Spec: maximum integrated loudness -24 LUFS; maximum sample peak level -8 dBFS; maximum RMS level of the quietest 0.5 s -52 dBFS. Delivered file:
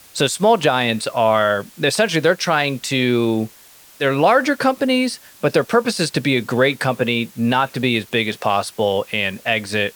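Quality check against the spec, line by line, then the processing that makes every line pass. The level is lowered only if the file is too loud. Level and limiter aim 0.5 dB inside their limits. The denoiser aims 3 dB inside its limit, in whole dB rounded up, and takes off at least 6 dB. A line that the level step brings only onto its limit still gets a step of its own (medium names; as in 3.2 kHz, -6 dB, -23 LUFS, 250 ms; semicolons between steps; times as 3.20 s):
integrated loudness -18.0 LUFS: fail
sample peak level -3.5 dBFS: fail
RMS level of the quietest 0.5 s -46 dBFS: fail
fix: trim -6.5 dB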